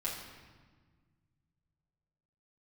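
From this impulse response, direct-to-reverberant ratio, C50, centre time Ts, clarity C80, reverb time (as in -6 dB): -7.0 dB, 3.5 dB, 57 ms, 5.5 dB, 1.5 s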